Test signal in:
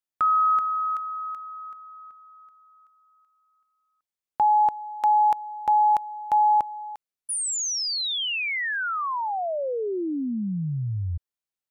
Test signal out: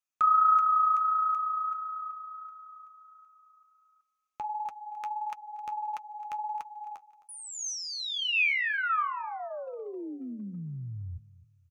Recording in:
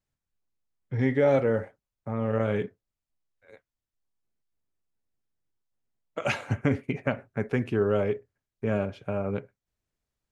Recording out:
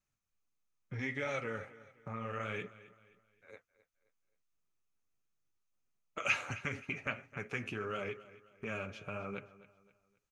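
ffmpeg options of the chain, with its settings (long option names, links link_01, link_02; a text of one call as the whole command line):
ffmpeg -i in.wav -filter_complex "[0:a]acrossover=split=3500[link_01][link_02];[link_02]acompressor=threshold=-43dB:ratio=4:attack=1:release=60[link_03];[link_01][link_03]amix=inputs=2:normalize=0,flanger=delay=4.8:depth=7.4:regen=-44:speed=1.5:shape=triangular,acrossover=split=1600[link_04][link_05];[link_04]acompressor=threshold=-36dB:ratio=6:attack=0.56:release=374:knee=1:detection=peak[link_06];[link_06][link_05]amix=inputs=2:normalize=0,equalizer=frequency=1250:width_type=o:width=0.33:gain=9,equalizer=frequency=2500:width_type=o:width=0.33:gain=8,equalizer=frequency=6300:width_type=o:width=0.33:gain=9,aecho=1:1:263|526|789:0.126|0.0478|0.0182" out.wav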